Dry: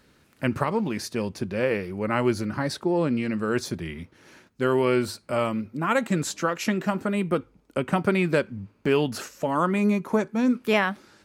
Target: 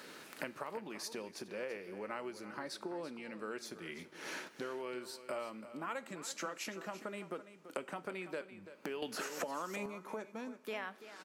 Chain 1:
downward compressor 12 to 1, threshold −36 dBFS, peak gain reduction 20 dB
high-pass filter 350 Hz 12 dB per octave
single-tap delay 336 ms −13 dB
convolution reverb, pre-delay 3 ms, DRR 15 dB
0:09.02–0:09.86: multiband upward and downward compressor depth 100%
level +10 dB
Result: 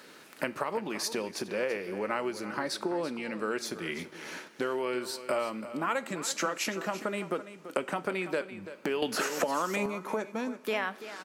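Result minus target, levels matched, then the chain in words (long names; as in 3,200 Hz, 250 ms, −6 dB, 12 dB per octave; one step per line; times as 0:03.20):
downward compressor: peak gain reduction −10.5 dB
downward compressor 12 to 1, threshold −47.5 dBFS, peak gain reduction 30.5 dB
high-pass filter 350 Hz 12 dB per octave
single-tap delay 336 ms −13 dB
convolution reverb, pre-delay 3 ms, DRR 15 dB
0:09.02–0:09.86: multiband upward and downward compressor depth 100%
level +10 dB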